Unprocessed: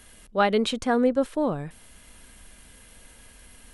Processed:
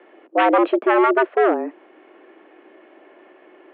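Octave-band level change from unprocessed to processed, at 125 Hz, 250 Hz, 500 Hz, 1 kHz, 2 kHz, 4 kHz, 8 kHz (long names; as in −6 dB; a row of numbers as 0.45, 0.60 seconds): below −25 dB, +3.5 dB, +7.0 dB, +9.5 dB, +9.0 dB, can't be measured, below −35 dB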